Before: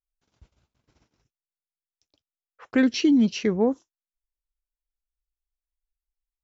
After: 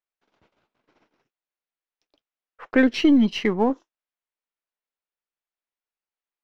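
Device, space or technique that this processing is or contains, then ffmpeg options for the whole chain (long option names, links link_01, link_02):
crystal radio: -filter_complex "[0:a]asettb=1/sr,asplit=3[link_01][link_02][link_03];[link_01]atrim=end=3.004[link_04];[link_02]atrim=start=3:end=3.7,asetpts=PTS-STARTPTS,afade=type=in:duration=0.004:curve=qsin,afade=type=out:start_time=0.696:duration=0.004:curve=qsin,aecho=1:1:1:0.52,atrim=end_sample=30870[link_05];[link_03]atrim=start=3.696[link_06];[link_04][link_05]acrossfade=duration=0.004:curve1=hsin:curve2=qsin[link_07];[link_07][link_06]acrossfade=duration=0.004:curve1=qsin:curve2=hsin,highpass=310,lowpass=2800,aeval=exprs='if(lt(val(0),0),0.708*val(0),val(0))':channel_layout=same,volume=7.5dB"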